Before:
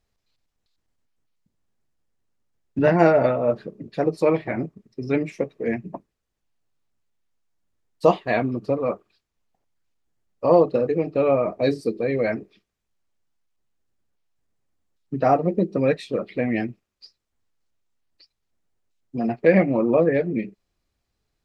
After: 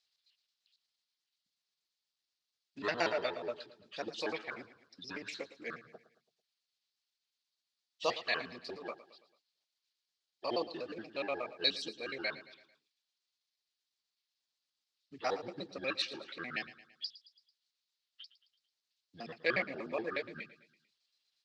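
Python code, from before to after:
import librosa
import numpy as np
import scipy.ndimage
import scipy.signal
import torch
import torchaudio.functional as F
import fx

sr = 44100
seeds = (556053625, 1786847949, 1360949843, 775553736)

p1 = fx.pitch_trill(x, sr, semitones=-6.5, every_ms=60)
p2 = fx.bandpass_q(p1, sr, hz=4300.0, q=2.7)
p3 = p2 + fx.echo_feedback(p2, sr, ms=111, feedback_pct=50, wet_db=-16.0, dry=0)
y = p3 * librosa.db_to_amplitude(9.0)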